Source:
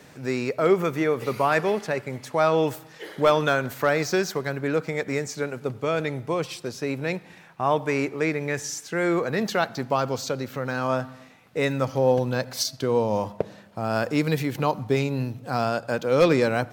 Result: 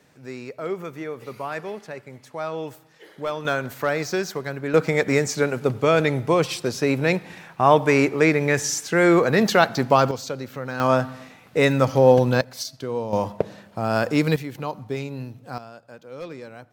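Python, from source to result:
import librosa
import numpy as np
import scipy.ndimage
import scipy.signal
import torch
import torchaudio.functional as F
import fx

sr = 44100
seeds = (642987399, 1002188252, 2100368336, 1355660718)

y = fx.gain(x, sr, db=fx.steps((0.0, -9.0), (3.45, -1.5), (4.74, 7.0), (10.11, -2.0), (10.8, 6.0), (12.41, -5.0), (13.13, 3.0), (14.36, -6.0), (15.58, -17.5)))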